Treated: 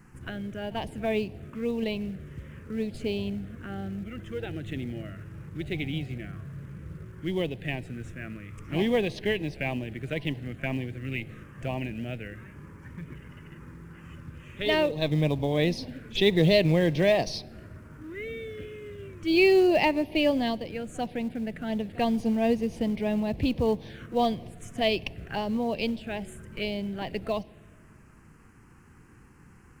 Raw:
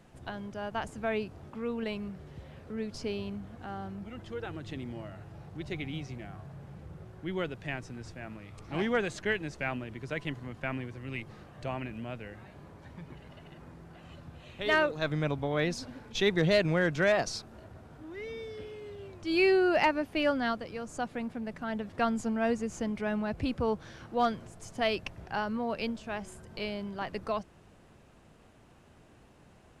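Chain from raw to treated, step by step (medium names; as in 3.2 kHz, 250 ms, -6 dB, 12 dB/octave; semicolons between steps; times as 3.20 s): vibrato 1.6 Hz 7.2 cents; touch-sensitive phaser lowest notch 600 Hz, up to 1.4 kHz, full sweep at -31 dBFS; in parallel at -9 dB: short-mantissa float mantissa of 2-bit; on the sum: pre-echo 46 ms -23 dB; on a send at -22 dB: reverberation RT60 1.7 s, pre-delay 6 ms; on the sum: trim +3.5 dB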